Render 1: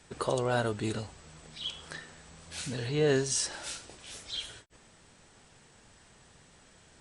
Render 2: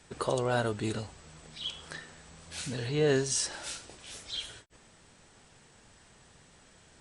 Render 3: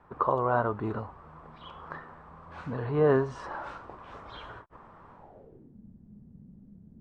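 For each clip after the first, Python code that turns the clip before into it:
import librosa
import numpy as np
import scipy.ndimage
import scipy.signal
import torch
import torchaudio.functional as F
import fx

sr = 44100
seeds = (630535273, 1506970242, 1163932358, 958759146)

y1 = x
y2 = fx.filter_sweep_lowpass(y1, sr, from_hz=1100.0, to_hz=210.0, start_s=5.13, end_s=5.78, q=4.5)
y2 = fx.rider(y2, sr, range_db=5, speed_s=2.0)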